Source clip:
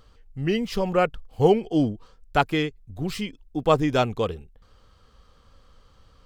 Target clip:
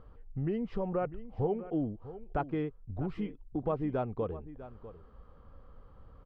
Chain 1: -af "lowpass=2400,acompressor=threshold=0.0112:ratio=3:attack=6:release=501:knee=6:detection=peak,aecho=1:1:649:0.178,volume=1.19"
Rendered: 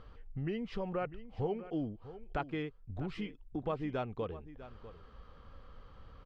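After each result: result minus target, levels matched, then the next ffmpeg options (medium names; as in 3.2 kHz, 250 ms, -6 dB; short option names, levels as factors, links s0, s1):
2 kHz band +7.0 dB; compression: peak gain reduction +4 dB
-af "lowpass=1100,acompressor=threshold=0.0112:ratio=3:attack=6:release=501:knee=6:detection=peak,aecho=1:1:649:0.178,volume=1.19"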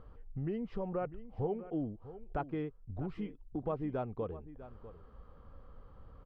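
compression: peak gain reduction +4 dB
-af "lowpass=1100,acompressor=threshold=0.0224:ratio=3:attack=6:release=501:knee=6:detection=peak,aecho=1:1:649:0.178,volume=1.19"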